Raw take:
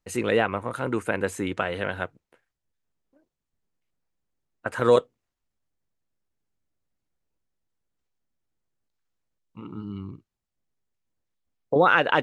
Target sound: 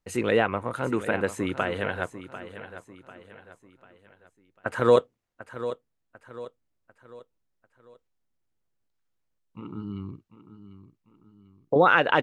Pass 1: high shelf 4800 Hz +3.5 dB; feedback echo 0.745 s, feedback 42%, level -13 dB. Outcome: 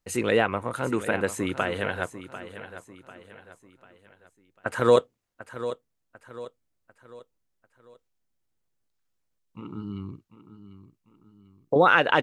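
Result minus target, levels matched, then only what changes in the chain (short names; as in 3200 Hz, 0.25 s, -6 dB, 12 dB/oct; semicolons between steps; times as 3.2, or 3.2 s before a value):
8000 Hz band +5.5 dB
change: high shelf 4800 Hz -4 dB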